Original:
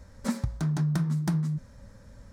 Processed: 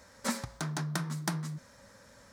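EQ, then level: HPF 850 Hz 6 dB/oct; +5.5 dB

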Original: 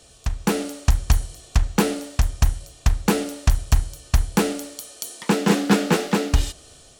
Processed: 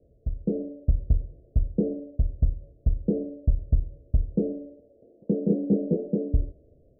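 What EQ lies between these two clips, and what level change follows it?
steep low-pass 610 Hz 72 dB/oct; -4.5 dB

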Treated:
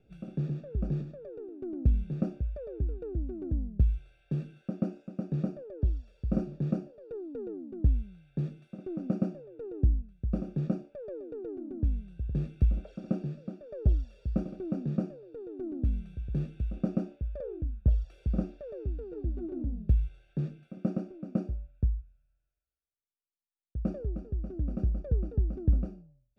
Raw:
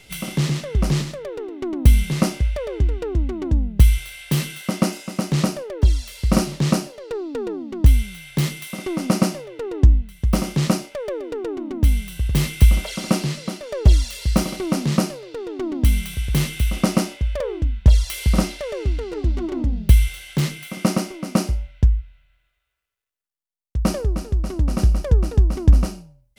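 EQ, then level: running mean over 43 samples; air absorption 55 m; low shelf 150 Hz -4.5 dB; -8.5 dB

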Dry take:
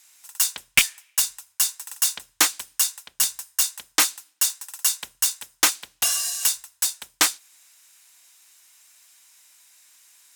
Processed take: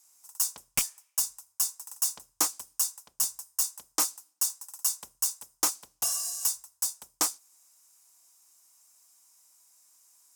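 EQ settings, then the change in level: band shelf 2500 Hz -12.5 dB; -6.0 dB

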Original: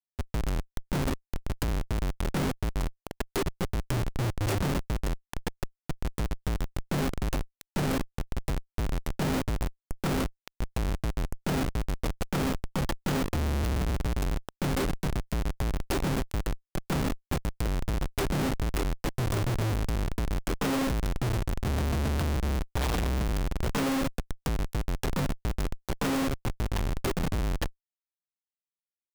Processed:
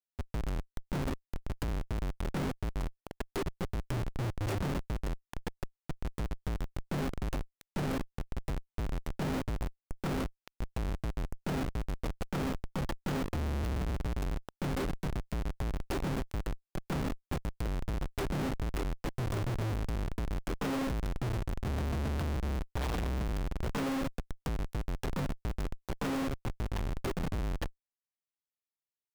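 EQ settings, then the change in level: high shelf 3900 Hz -5.5 dB; -5.0 dB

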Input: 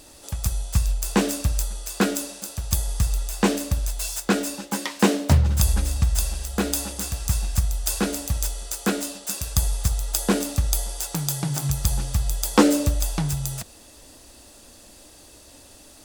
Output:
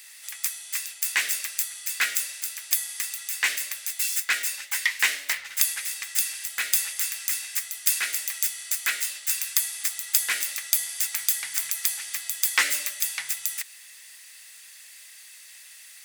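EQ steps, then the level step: resonant high-pass 2000 Hz, resonance Q 5; high shelf 11000 Hz +12 dB; -2.0 dB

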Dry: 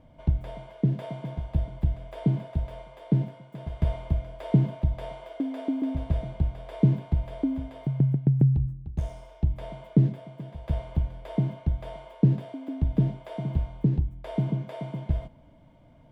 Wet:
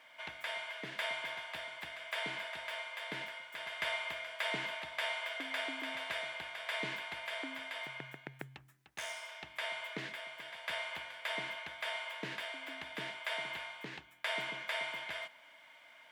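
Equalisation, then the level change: resonant high-pass 1800 Hz, resonance Q 1.9; +11.0 dB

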